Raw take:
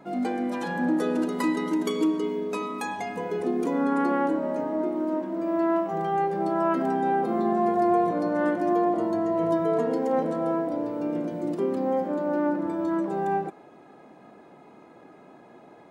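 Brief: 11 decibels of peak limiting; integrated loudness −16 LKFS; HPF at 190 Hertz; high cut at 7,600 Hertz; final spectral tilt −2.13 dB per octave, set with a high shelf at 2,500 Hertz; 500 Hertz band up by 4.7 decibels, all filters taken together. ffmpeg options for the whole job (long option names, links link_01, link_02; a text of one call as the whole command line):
ffmpeg -i in.wav -af "highpass=190,lowpass=7600,equalizer=frequency=500:width_type=o:gain=6.5,highshelf=frequency=2500:gain=4,volume=11dB,alimiter=limit=-8dB:level=0:latency=1" out.wav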